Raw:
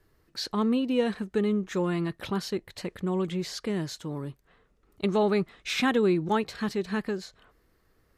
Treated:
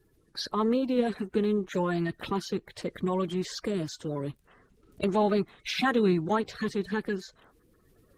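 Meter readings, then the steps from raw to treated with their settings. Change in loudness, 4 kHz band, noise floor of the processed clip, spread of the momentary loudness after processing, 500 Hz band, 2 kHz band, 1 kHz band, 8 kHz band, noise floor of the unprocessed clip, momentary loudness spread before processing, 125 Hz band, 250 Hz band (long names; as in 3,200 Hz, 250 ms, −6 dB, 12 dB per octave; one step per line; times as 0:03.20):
−1.0 dB, −1.5 dB, −66 dBFS, 10 LU, −0.5 dB, −0.5 dB, +1.0 dB, −2.0 dB, −67 dBFS, 11 LU, −0.5 dB, −1.0 dB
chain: spectral magnitudes quantised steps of 30 dB
camcorder AGC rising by 6 dB per second
Opus 24 kbit/s 48,000 Hz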